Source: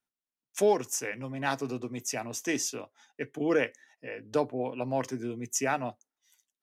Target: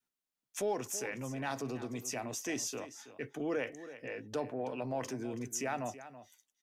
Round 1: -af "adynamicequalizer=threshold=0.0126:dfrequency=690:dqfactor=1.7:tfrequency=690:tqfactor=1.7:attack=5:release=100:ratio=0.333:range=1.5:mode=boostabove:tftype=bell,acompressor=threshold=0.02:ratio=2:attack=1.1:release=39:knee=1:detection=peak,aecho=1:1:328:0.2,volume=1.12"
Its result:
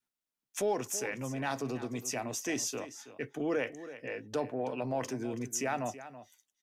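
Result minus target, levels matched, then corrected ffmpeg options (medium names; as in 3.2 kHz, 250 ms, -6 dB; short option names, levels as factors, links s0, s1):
compression: peak gain reduction -3 dB
-af "adynamicequalizer=threshold=0.0126:dfrequency=690:dqfactor=1.7:tfrequency=690:tqfactor=1.7:attack=5:release=100:ratio=0.333:range=1.5:mode=boostabove:tftype=bell,acompressor=threshold=0.01:ratio=2:attack=1.1:release=39:knee=1:detection=peak,aecho=1:1:328:0.2,volume=1.12"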